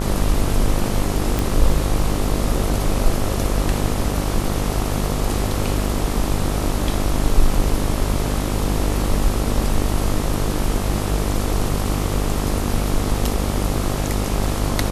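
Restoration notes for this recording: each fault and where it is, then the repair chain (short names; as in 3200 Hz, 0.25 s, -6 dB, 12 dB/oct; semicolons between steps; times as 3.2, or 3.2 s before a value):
buzz 50 Hz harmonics 27 -23 dBFS
1.39 pop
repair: de-click; de-hum 50 Hz, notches 27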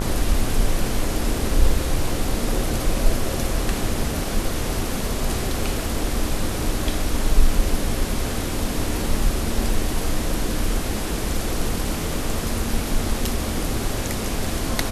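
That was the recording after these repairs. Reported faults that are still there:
none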